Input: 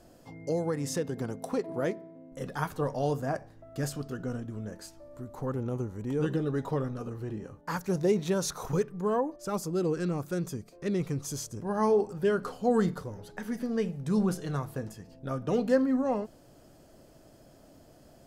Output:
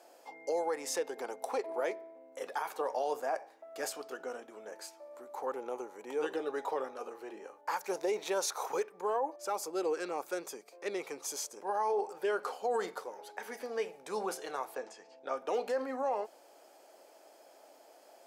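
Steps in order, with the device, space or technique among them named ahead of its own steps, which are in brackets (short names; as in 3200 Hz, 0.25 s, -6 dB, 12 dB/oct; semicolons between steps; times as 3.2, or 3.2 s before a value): laptop speaker (HPF 420 Hz 24 dB/oct; bell 840 Hz +8.5 dB 0.3 oct; bell 2300 Hz +7 dB 0.2 oct; limiter -24 dBFS, peak gain reduction 11 dB); 14.75–15.37 LPF 7600 Hz 24 dB/oct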